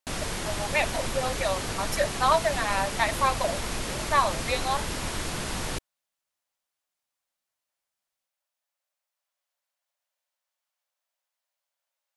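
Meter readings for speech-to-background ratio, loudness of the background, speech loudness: 4.0 dB, -31.5 LUFS, -27.5 LUFS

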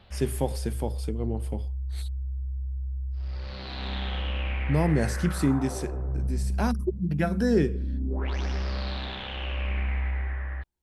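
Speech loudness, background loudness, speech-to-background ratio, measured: -28.5 LUFS, -32.5 LUFS, 4.0 dB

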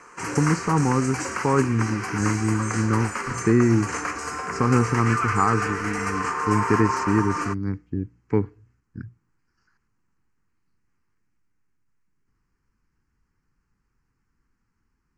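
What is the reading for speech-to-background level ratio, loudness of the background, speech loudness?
4.0 dB, -28.0 LUFS, -24.0 LUFS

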